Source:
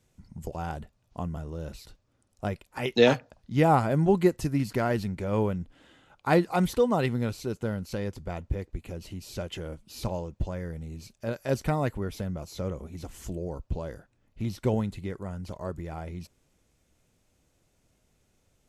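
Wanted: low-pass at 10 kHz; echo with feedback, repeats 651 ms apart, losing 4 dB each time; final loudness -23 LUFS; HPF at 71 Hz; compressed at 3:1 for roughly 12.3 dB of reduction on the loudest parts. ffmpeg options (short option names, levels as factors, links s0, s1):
-af "highpass=71,lowpass=10000,acompressor=threshold=0.0251:ratio=3,aecho=1:1:651|1302|1953|2604|3255|3906|4557|5208|5859:0.631|0.398|0.25|0.158|0.0994|0.0626|0.0394|0.0249|0.0157,volume=4.22"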